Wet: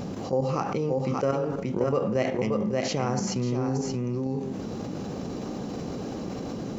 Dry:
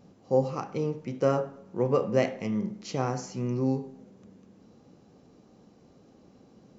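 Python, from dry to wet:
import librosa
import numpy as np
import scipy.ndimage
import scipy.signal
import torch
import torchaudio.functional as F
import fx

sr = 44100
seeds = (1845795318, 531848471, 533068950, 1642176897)

p1 = fx.level_steps(x, sr, step_db=12)
p2 = p1 + fx.echo_single(p1, sr, ms=579, db=-6.5, dry=0)
y = fx.env_flatten(p2, sr, amount_pct=70)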